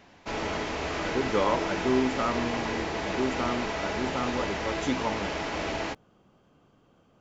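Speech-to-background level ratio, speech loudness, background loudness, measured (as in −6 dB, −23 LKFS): 0.0 dB, −31.5 LKFS, −31.5 LKFS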